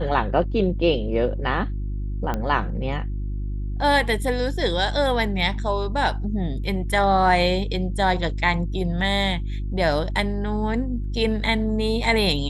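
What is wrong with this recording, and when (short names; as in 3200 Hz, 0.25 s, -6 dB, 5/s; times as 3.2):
hum 50 Hz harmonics 7 -27 dBFS
2.34 pop -13 dBFS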